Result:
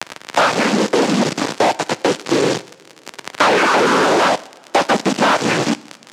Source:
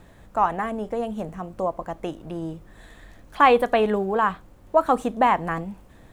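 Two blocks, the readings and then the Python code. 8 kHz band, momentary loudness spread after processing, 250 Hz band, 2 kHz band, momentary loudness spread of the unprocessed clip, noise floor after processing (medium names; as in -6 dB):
no reading, 9 LU, +10.0 dB, +12.0 dB, 15 LU, -46 dBFS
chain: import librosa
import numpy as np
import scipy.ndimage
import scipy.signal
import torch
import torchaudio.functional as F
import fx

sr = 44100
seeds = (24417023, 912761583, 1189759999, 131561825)

y = fx.freq_compress(x, sr, knee_hz=2000.0, ratio=1.5)
y = fx.noise_reduce_blind(y, sr, reduce_db=10)
y = fx.high_shelf(y, sr, hz=2000.0, db=-4.5)
y = fx.rider(y, sr, range_db=3, speed_s=2.0)
y = fx.spec_paint(y, sr, seeds[0], shape='fall', start_s=3.51, length_s=0.84, low_hz=610.0, high_hz=1700.0, level_db=-26.0)
y = fx.quant_dither(y, sr, seeds[1], bits=6, dither='triangular')
y = fx.noise_vocoder(y, sr, seeds[2], bands=8)
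y = y + 10.0 ** (-24.0 / 20.0) * np.pad(y, (int(166 * sr / 1000.0), 0))[:len(y)]
y = fx.fuzz(y, sr, gain_db=35.0, gate_db=-32.0)
y = fx.bandpass_edges(y, sr, low_hz=200.0, high_hz=6200.0)
y = fx.rev_double_slope(y, sr, seeds[3], early_s=0.55, late_s=2.1, knee_db=-20, drr_db=17.0)
y = fx.band_squash(y, sr, depth_pct=70)
y = y * librosa.db_to_amplitude(2.5)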